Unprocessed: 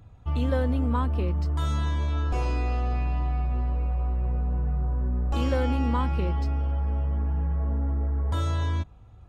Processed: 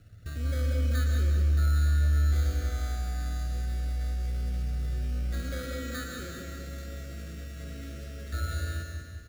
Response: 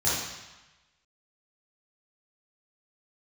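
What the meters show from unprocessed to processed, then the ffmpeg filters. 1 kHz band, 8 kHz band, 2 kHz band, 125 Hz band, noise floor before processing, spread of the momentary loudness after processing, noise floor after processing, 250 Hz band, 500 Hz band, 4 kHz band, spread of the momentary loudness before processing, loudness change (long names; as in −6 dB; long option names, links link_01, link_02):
−11.5 dB, can't be measured, +0.5 dB, −3.0 dB, −49 dBFS, 16 LU, −43 dBFS, −9.5 dB, −9.0 dB, −0.5 dB, 3 LU, −3.0 dB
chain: -filter_complex "[0:a]acrossover=split=990[link_01][link_02];[link_01]alimiter=limit=-22.5dB:level=0:latency=1[link_03];[link_03][link_02]amix=inputs=2:normalize=0,acompressor=threshold=-35dB:ratio=4,aeval=exprs='0.0473*(cos(1*acos(clip(val(0)/0.0473,-1,1)))-cos(1*PI/2))+0.00266*(cos(7*acos(clip(val(0)/0.0473,-1,1)))-cos(7*PI/2))':channel_layout=same,lowpass=frequency=1300:width_type=q:width=2.2,acrusher=samples=16:mix=1:aa=0.000001,asuperstop=centerf=930:order=8:qfactor=1.7,aecho=1:1:191|382|573|764|955|1146:0.473|0.232|0.114|0.0557|0.0273|0.0134,asplit=2[link_04][link_05];[1:a]atrim=start_sample=2205,adelay=93[link_06];[link_05][link_06]afir=irnorm=-1:irlink=0,volume=-16.5dB[link_07];[link_04][link_07]amix=inputs=2:normalize=0,volume=-1.5dB"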